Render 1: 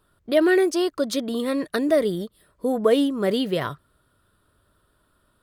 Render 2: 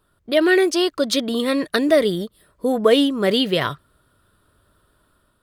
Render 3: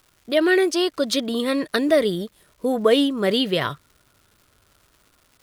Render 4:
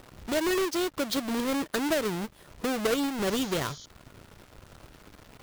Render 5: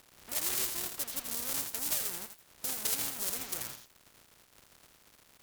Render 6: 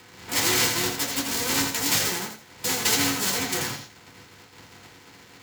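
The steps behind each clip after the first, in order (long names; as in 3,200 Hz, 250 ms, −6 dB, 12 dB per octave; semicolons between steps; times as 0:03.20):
dynamic equaliser 3,200 Hz, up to +7 dB, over −41 dBFS, Q 0.71; automatic gain control gain up to 4 dB
surface crackle 390 per second −43 dBFS; level −2 dB
each half-wave held at its own peak; downward compressor 2 to 1, threshold −34 dBFS, peak gain reduction 13.5 dB; sound drawn into the spectrogram noise, 0:03.26–0:03.86, 3,000–7,100 Hz −46 dBFS; level −1.5 dB
compressing power law on the bin magnitudes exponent 0.32; harmonic generator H 7 −13 dB, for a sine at −8 dBFS; feedback echo at a low word length 83 ms, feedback 35%, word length 8 bits, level −6 dB; level −5 dB
in parallel at −9 dB: bit-depth reduction 6 bits, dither none; on the sum: convolution reverb RT60 0.35 s, pre-delay 3 ms, DRR −4.5 dB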